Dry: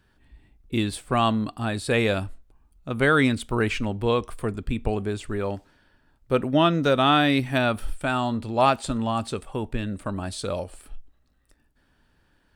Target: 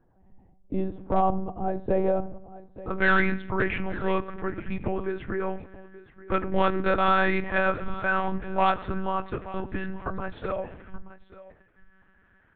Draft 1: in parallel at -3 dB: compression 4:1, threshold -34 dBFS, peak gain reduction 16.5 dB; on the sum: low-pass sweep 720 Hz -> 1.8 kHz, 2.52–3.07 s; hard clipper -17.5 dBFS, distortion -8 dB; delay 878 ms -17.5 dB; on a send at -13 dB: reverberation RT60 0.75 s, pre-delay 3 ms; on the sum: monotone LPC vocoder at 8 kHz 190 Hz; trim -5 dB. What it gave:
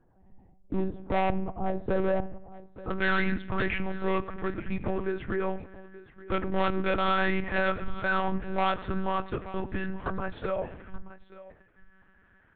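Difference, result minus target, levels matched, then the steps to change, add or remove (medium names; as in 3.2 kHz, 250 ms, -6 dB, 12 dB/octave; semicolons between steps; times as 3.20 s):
hard clipper: distortion +11 dB
change: hard clipper -10 dBFS, distortion -19 dB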